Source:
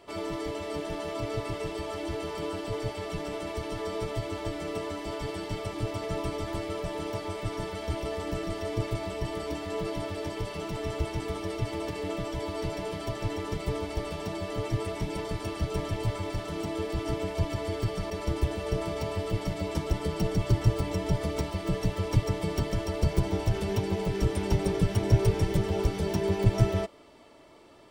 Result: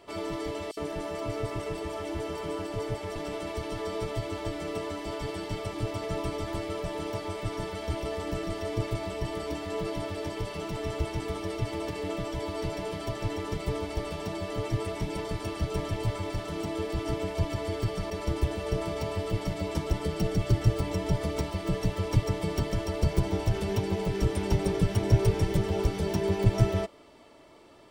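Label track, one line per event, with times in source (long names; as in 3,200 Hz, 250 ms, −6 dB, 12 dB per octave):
0.710000	3.160000	multiband delay without the direct sound highs, lows 60 ms, split 3,700 Hz
20.050000	20.800000	notch filter 960 Hz, Q 7.6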